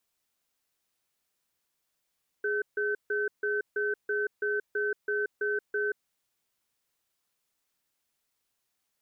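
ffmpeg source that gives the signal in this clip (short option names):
-f lavfi -i "aevalsrc='0.0355*(sin(2*PI*416*t)+sin(2*PI*1530*t))*clip(min(mod(t,0.33),0.18-mod(t,0.33))/0.005,0,1)':d=3.61:s=44100"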